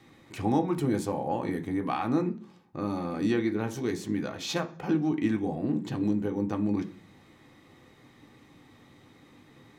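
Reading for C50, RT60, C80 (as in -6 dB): 15.5 dB, 0.40 s, 20.0 dB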